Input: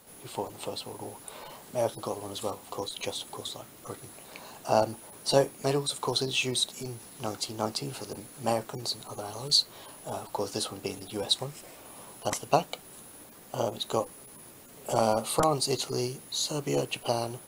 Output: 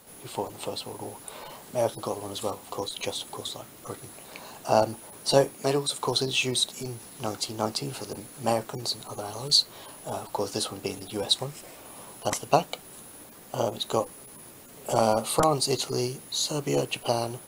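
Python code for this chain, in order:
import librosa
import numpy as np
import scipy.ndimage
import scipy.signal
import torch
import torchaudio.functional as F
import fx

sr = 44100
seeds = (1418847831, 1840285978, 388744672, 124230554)

y = fx.highpass(x, sr, hz=140.0, slope=12, at=(5.55, 6.01))
y = F.gain(torch.from_numpy(y), 2.5).numpy()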